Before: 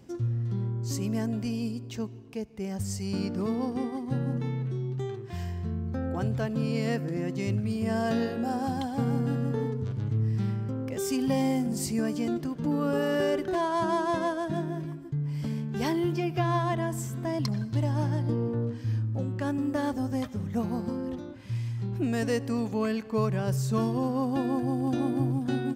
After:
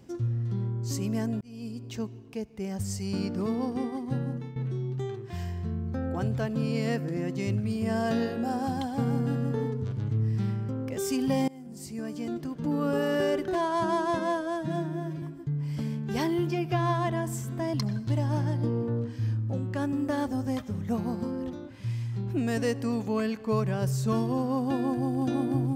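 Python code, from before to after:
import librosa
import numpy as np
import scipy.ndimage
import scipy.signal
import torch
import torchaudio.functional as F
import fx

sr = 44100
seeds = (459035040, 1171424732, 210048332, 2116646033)

y = fx.edit(x, sr, fx.fade_in_span(start_s=1.41, length_s=0.49),
    fx.fade_out_to(start_s=4.0, length_s=0.56, curve='qsin', floor_db=-14.0),
    fx.fade_in_from(start_s=11.48, length_s=1.36, floor_db=-24.0),
    fx.stretch_span(start_s=14.19, length_s=0.69, factor=1.5), tone=tone)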